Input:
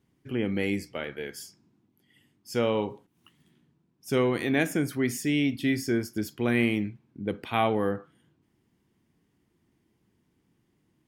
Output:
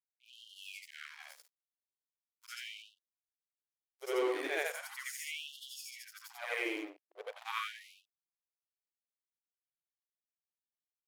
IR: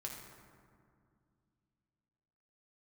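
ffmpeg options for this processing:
-af "afftfilt=real='re':imag='-im':win_size=8192:overlap=0.75,aeval=exprs='sgn(val(0))*max(abs(val(0))-0.00708,0)':channel_layout=same,afftfilt=real='re*gte(b*sr/1024,280*pow(2800/280,0.5+0.5*sin(2*PI*0.39*pts/sr)))':imag='im*gte(b*sr/1024,280*pow(2800/280,0.5+0.5*sin(2*PI*0.39*pts/sr)))':win_size=1024:overlap=0.75,volume=-1dB"

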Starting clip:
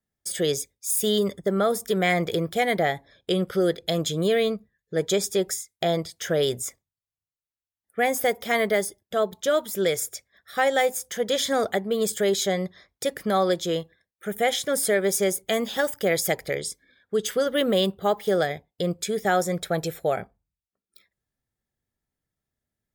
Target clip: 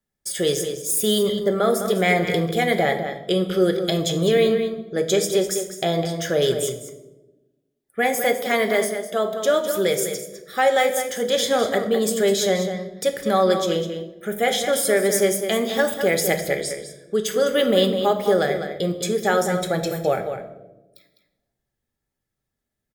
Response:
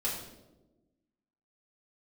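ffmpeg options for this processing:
-filter_complex "[0:a]asettb=1/sr,asplit=3[link_01][link_02][link_03];[link_01]atrim=end=8.154[link_04];[link_02]atrim=start=8.15:end=9.42,asetpts=PTS-STARTPTS,afade=type=in:duration=0.004:curve=qsin,afade=type=out:start_time=1.266:duration=0.004:curve=qsin,highpass=170[link_05];[link_03]atrim=start=9.416[link_06];[link_04][link_05]acrossfade=duration=0.004:curve1=hsin:curve2=qsin[link_07];[link_07][link_06]acrossfade=duration=0.004:curve1=qsin:curve2=hsin,asplit=2[link_08][link_09];[link_09]adelay=204.1,volume=-8dB,highshelf=frequency=4000:gain=-4.59[link_10];[link_08][link_10]amix=inputs=2:normalize=0,asplit=2[link_11][link_12];[1:a]atrim=start_sample=2205[link_13];[link_12][link_13]afir=irnorm=-1:irlink=0,volume=-8.5dB[link_14];[link_11][link_14]amix=inputs=2:normalize=0"

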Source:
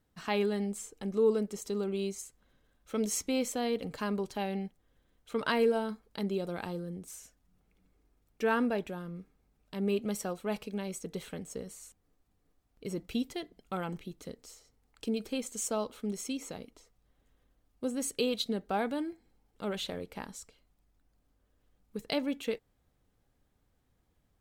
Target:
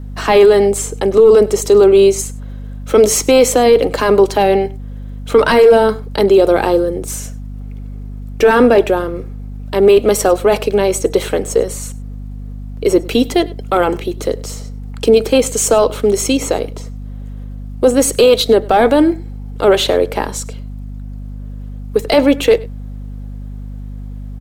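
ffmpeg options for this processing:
ffmpeg -i in.wav -filter_complex "[0:a]highpass=frequency=350:width=0.5412,highpass=frequency=350:width=1.3066,aeval=exprs='val(0)+0.00126*(sin(2*PI*50*n/s)+sin(2*PI*2*50*n/s)/2+sin(2*PI*3*50*n/s)/3+sin(2*PI*4*50*n/s)/4+sin(2*PI*5*50*n/s)/5)':channel_layout=same,apsyclip=32dB,tiltshelf=frequency=850:gain=5,asplit=2[link_01][link_02];[link_02]aecho=0:1:100:0.0841[link_03];[link_01][link_03]amix=inputs=2:normalize=0,volume=-5.5dB" out.wav

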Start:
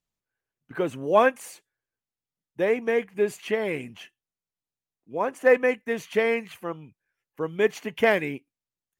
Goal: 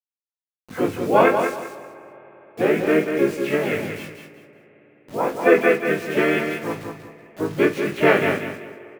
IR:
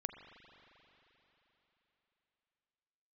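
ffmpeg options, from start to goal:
-filter_complex "[0:a]highshelf=frequency=4600:gain=-8.5,asplit=4[link_01][link_02][link_03][link_04];[link_02]asetrate=29433,aresample=44100,atempo=1.49831,volume=-4dB[link_05];[link_03]asetrate=37084,aresample=44100,atempo=1.18921,volume=-2dB[link_06];[link_04]asetrate=58866,aresample=44100,atempo=0.749154,volume=-8dB[link_07];[link_01][link_05][link_06][link_07]amix=inputs=4:normalize=0,equalizer=frequency=2400:width=3.1:gain=5,aeval=exprs='val(0)+0.00316*sin(2*PI*490*n/s)':channel_layout=same,acrusher=bits=6:mix=0:aa=0.000001,flanger=delay=18:depth=2.3:speed=0.44,aecho=1:1:189|378|567:0.473|0.128|0.0345,asplit=2[link_08][link_09];[1:a]atrim=start_sample=2205,asetrate=33957,aresample=44100,adelay=49[link_10];[link_09][link_10]afir=irnorm=-1:irlink=0,volume=-12.5dB[link_11];[link_08][link_11]amix=inputs=2:normalize=0,volume=3.5dB"

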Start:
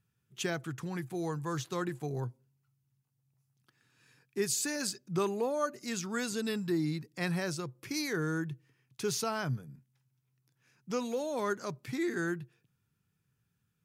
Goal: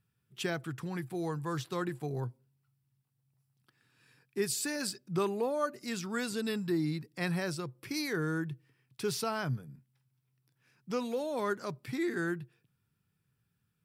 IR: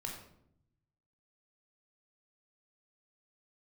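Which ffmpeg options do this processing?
-af "equalizer=frequency=6500:width=6.8:gain=-11"

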